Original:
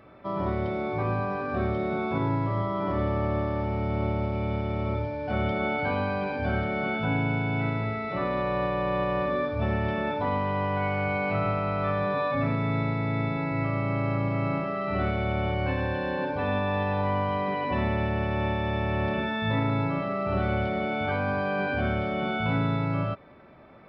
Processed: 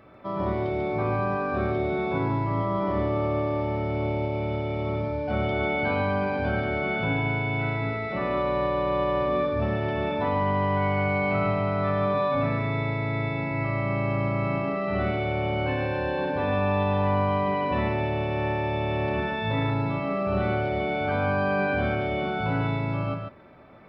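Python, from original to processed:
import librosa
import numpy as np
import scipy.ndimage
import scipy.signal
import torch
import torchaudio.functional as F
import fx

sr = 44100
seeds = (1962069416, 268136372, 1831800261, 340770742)

y = x + 10.0 ** (-5.5 / 20.0) * np.pad(x, (int(143 * sr / 1000.0), 0))[:len(x)]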